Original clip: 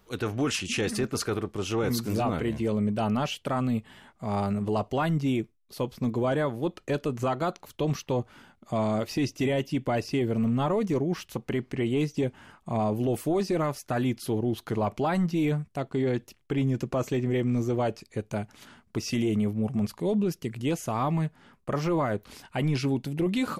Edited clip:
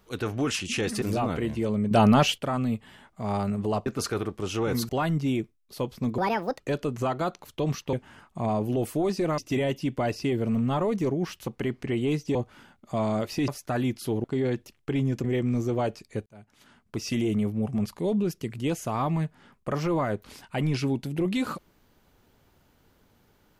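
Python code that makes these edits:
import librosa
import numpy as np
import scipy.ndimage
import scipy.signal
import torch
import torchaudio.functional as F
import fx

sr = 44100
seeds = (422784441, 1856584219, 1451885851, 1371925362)

y = fx.edit(x, sr, fx.move(start_s=1.02, length_s=1.03, to_s=4.89),
    fx.clip_gain(start_s=2.94, length_s=0.47, db=8.5),
    fx.speed_span(start_s=6.18, length_s=0.63, speed=1.5),
    fx.swap(start_s=8.14, length_s=1.13, other_s=12.24, other_length_s=1.45),
    fx.cut(start_s=14.45, length_s=1.41),
    fx.cut(start_s=16.86, length_s=0.39),
    fx.fade_in_span(start_s=18.27, length_s=0.86), tone=tone)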